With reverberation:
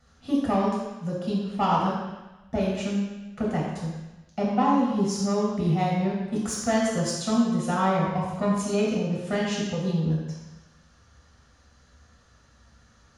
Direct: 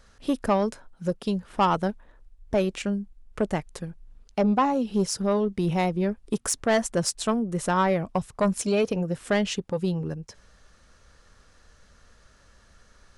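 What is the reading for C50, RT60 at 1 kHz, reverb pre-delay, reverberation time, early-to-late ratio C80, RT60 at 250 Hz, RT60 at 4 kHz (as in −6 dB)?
0.5 dB, 1.1 s, 3 ms, 1.1 s, 2.5 dB, 1.1 s, 1.2 s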